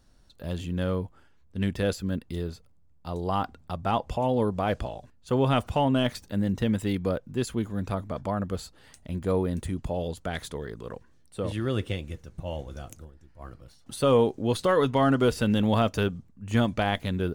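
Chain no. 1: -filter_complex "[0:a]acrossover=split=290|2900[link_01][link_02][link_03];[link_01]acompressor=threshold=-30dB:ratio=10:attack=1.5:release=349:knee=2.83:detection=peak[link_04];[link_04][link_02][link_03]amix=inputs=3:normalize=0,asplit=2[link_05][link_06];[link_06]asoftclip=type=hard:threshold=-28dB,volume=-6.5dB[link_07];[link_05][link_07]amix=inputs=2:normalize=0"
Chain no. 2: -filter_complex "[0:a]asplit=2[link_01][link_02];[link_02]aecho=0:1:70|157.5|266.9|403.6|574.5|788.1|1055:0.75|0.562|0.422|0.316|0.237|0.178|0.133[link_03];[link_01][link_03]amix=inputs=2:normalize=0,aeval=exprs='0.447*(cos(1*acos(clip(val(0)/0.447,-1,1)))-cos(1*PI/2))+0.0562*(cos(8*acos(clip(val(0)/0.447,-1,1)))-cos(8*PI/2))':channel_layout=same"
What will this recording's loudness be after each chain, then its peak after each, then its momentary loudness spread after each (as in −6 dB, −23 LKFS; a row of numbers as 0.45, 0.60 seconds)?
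−28.0, −24.0 LKFS; −10.0, −6.0 dBFS; 17, 15 LU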